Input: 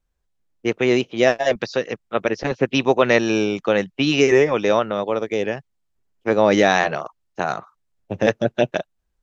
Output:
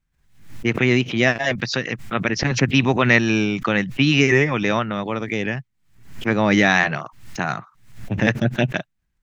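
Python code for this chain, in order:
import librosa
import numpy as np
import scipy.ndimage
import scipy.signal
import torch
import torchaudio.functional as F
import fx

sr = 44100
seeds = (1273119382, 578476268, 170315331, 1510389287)

y = fx.graphic_eq(x, sr, hz=(125, 250, 500, 2000), db=(10, 4, -8, 7))
y = fx.pre_swell(y, sr, db_per_s=97.0)
y = y * librosa.db_to_amplitude(-1.5)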